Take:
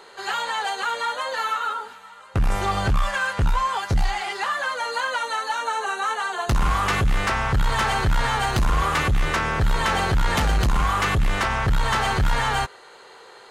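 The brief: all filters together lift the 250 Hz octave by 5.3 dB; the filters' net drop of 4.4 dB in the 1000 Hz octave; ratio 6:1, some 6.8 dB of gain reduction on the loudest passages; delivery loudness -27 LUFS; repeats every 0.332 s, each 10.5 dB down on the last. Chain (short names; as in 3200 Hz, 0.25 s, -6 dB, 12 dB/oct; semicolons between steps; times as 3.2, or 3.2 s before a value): bell 250 Hz +8 dB; bell 1000 Hz -6 dB; compressor 6:1, threshold -23 dBFS; feedback echo 0.332 s, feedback 30%, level -10.5 dB; gain +0.5 dB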